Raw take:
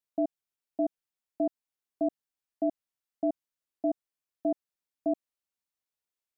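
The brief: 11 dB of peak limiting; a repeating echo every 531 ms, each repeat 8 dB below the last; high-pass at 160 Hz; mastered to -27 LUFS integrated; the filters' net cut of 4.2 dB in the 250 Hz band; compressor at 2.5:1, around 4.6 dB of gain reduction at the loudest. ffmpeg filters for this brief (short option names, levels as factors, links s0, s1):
-af "highpass=160,equalizer=f=250:t=o:g=-5,acompressor=threshold=0.0251:ratio=2.5,alimiter=level_in=2.99:limit=0.0631:level=0:latency=1,volume=0.335,aecho=1:1:531|1062|1593|2124|2655:0.398|0.159|0.0637|0.0255|0.0102,volume=11.2"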